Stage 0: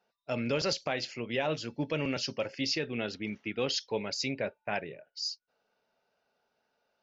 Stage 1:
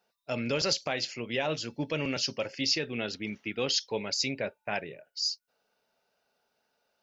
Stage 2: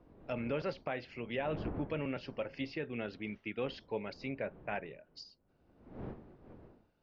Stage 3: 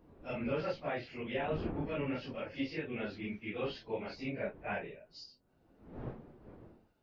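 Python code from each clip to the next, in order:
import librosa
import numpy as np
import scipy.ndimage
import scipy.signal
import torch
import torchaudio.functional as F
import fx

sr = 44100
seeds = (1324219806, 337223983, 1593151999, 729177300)

y1 = fx.high_shelf(x, sr, hz=4400.0, db=8.5)
y2 = fx.dmg_wind(y1, sr, seeds[0], corner_hz=360.0, level_db=-46.0)
y2 = fx.env_lowpass_down(y2, sr, base_hz=2100.0, full_db=-28.0)
y2 = scipy.signal.sosfilt(scipy.signal.butter(2, 3300.0, 'lowpass', fs=sr, output='sos'), y2)
y2 = y2 * 10.0 ** (-5.0 / 20.0)
y3 = fx.phase_scramble(y2, sr, seeds[1], window_ms=100)
y3 = y3 * 10.0 ** (1.0 / 20.0)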